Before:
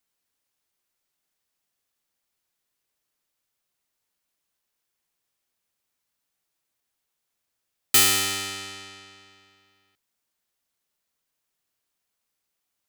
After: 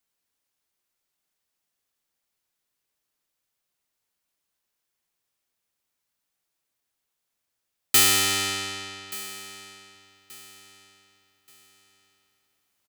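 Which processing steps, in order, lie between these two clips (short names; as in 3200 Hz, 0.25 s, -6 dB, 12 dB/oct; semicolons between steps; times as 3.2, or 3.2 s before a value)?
vocal rider 0.5 s; feedback echo 1.179 s, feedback 32%, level -18 dB; gain +2.5 dB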